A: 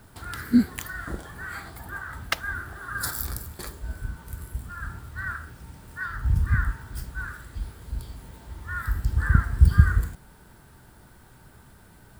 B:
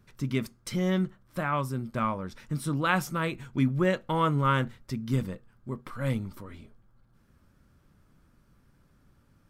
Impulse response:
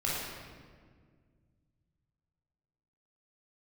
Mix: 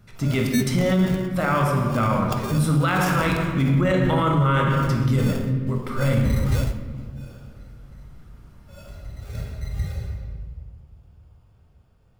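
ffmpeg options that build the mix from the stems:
-filter_complex "[0:a]acrusher=samples=22:mix=1:aa=0.000001,adynamicequalizer=threshold=0.00501:dfrequency=3100:dqfactor=0.7:tfrequency=3100:tqfactor=0.7:attack=5:release=100:ratio=0.375:range=2.5:mode=boostabove:tftype=highshelf,volume=-2.5dB,asplit=2[link_01][link_02];[link_02]volume=-18.5dB[link_03];[1:a]volume=3dB,asplit=3[link_04][link_05][link_06];[link_05]volume=-3.5dB[link_07];[link_06]apad=whole_len=537716[link_08];[link_01][link_08]sidechaingate=range=-33dB:threshold=-49dB:ratio=16:detection=peak[link_09];[2:a]atrim=start_sample=2205[link_10];[link_03][link_07]amix=inputs=2:normalize=0[link_11];[link_11][link_10]afir=irnorm=-1:irlink=0[link_12];[link_09][link_04][link_12]amix=inputs=3:normalize=0,alimiter=limit=-12dB:level=0:latency=1:release=15"

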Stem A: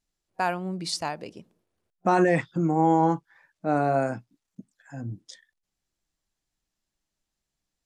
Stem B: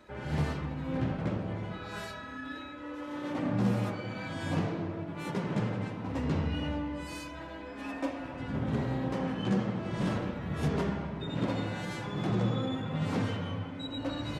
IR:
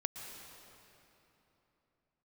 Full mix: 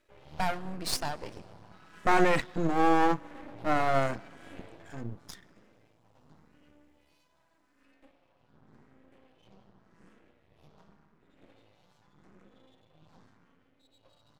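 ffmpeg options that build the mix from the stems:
-filter_complex "[0:a]volume=2.5dB,asplit=2[link_01][link_02];[link_02]volume=-21.5dB[link_03];[1:a]asplit=2[link_04][link_05];[link_05]afreqshift=0.87[link_06];[link_04][link_06]amix=inputs=2:normalize=1,volume=-10dB,afade=type=out:start_time=4.65:duration=0.7:silence=0.237137,asplit=2[link_07][link_08];[link_08]volume=-9dB[link_09];[2:a]atrim=start_sample=2205[link_10];[link_03][link_09]amix=inputs=2:normalize=0[link_11];[link_11][link_10]afir=irnorm=-1:irlink=0[link_12];[link_01][link_07][link_12]amix=inputs=3:normalize=0,lowshelf=frequency=180:gain=-7,aeval=exprs='max(val(0),0)':channel_layout=same"

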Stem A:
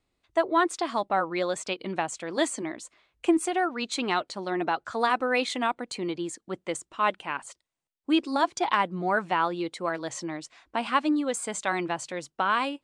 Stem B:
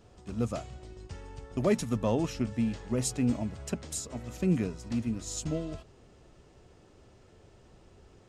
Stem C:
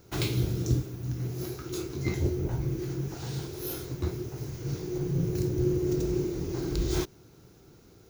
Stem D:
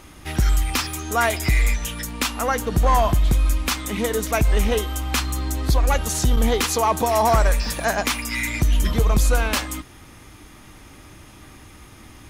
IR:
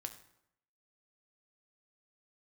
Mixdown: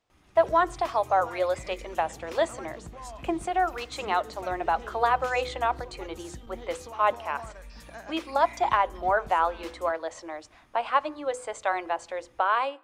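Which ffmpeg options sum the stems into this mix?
-filter_complex "[0:a]highpass=frequency=540:width=0.5412,highpass=frequency=540:width=1.3066,tiltshelf=frequency=840:gain=7.5,volume=1.5dB,asplit=3[link_01][link_02][link_03];[link_02]volume=-10dB[link_04];[1:a]tiltshelf=frequency=970:gain=-8.5,volume=-18dB[link_05];[2:a]alimiter=level_in=2dB:limit=-24dB:level=0:latency=1:release=188,volume=-2dB,volume=-17.5dB[link_06];[3:a]acompressor=threshold=-24dB:ratio=2.5,adelay=100,volume=-16.5dB[link_07];[link_03]apad=whole_len=356865[link_08];[link_06][link_08]sidechaingate=range=-33dB:threshold=-44dB:ratio=16:detection=peak[link_09];[4:a]atrim=start_sample=2205[link_10];[link_04][link_10]afir=irnorm=-1:irlink=0[link_11];[link_01][link_05][link_09][link_07][link_11]amix=inputs=5:normalize=0,highshelf=frequency=6700:gain=-10.5,bandreject=frequency=50:width_type=h:width=6,bandreject=frequency=100:width_type=h:width=6,bandreject=frequency=150:width_type=h:width=6,bandreject=frequency=200:width_type=h:width=6,bandreject=frequency=250:width_type=h:width=6,bandreject=frequency=300:width_type=h:width=6,bandreject=frequency=350:width_type=h:width=6,bandreject=frequency=400:width_type=h:width=6,bandreject=frequency=450:width_type=h:width=6,bandreject=frequency=500:width_type=h:width=6"

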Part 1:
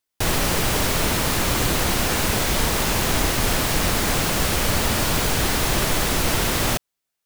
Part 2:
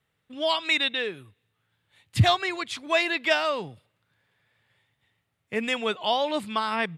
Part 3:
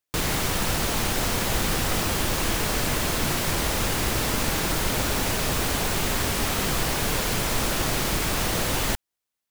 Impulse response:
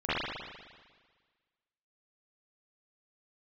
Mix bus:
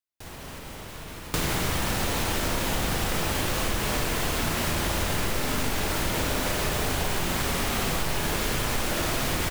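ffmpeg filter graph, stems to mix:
-filter_complex "[0:a]alimiter=limit=-18.5dB:level=0:latency=1:release=282,volume=-15.5dB,asplit=2[link_01][link_02];[link_02]volume=-10dB[link_03];[2:a]adelay=1200,volume=1.5dB,asplit=2[link_04][link_05];[link_05]volume=-12.5dB[link_06];[3:a]atrim=start_sample=2205[link_07];[link_03][link_06]amix=inputs=2:normalize=0[link_08];[link_08][link_07]afir=irnorm=-1:irlink=0[link_09];[link_01][link_04][link_09]amix=inputs=3:normalize=0,acompressor=threshold=-24dB:ratio=4"

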